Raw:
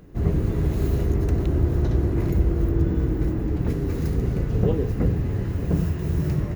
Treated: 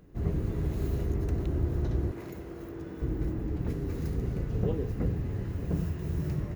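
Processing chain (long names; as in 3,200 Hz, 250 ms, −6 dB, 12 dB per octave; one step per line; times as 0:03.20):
0:02.11–0:03.02: high-pass filter 560 Hz 6 dB per octave
level −8 dB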